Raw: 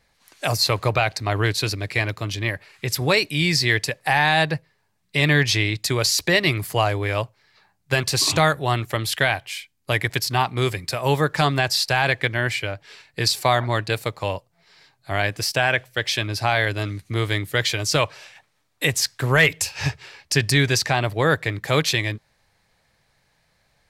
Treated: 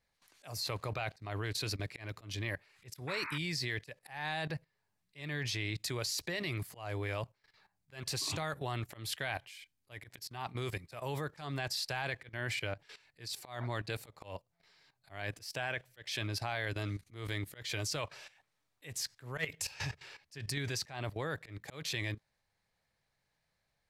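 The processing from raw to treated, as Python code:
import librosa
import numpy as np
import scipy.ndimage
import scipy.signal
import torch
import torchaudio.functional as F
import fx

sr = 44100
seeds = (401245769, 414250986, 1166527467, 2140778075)

y = fx.level_steps(x, sr, step_db=15)
y = fx.auto_swell(y, sr, attack_ms=196.0)
y = fx.spec_paint(y, sr, seeds[0], shape='noise', start_s=3.07, length_s=0.31, low_hz=870.0, high_hz=2600.0, level_db=-36.0)
y = y * 10.0 ** (-6.5 / 20.0)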